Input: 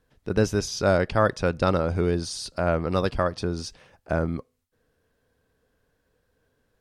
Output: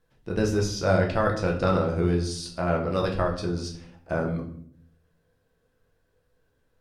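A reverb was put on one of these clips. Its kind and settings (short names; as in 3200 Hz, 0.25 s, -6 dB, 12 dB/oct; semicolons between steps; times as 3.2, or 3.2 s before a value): shoebox room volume 84 m³, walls mixed, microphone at 0.75 m; gain -4.5 dB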